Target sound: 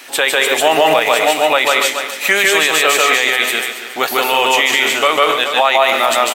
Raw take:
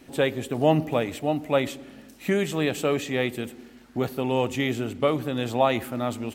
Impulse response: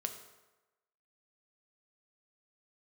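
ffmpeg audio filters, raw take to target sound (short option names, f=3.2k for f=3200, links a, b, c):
-filter_complex "[0:a]asplit=3[a][b][c];[a]afade=t=out:st=5.09:d=0.02[d];[b]agate=range=-15dB:threshold=-25dB:ratio=16:detection=peak,afade=t=in:st=5.09:d=0.02,afade=t=out:st=5.88:d=0.02[e];[c]afade=t=in:st=5.88:d=0.02[f];[d][e][f]amix=inputs=3:normalize=0,highpass=1.1k,aecho=1:1:278|556|834:0.224|0.0672|0.0201,asplit=2[g][h];[1:a]atrim=start_sample=2205,atrim=end_sample=6615,adelay=149[i];[h][i]afir=irnorm=-1:irlink=0,volume=0dB[j];[g][j]amix=inputs=2:normalize=0,alimiter=level_in=23dB:limit=-1dB:release=50:level=0:latency=1,volume=-1dB"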